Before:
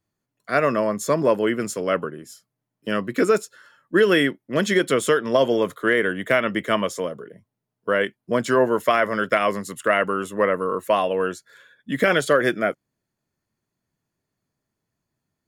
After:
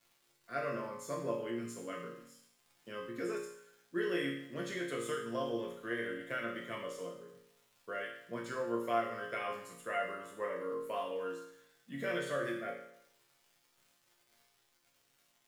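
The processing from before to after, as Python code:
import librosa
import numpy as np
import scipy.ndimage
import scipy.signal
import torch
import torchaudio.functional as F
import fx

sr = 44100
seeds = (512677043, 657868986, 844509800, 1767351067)

y = fx.dmg_crackle(x, sr, seeds[0], per_s=260.0, level_db=-35.0)
y = fx.resonator_bank(y, sr, root=46, chord='minor', decay_s=0.72)
y = y * librosa.db_to_amplitude(1.0)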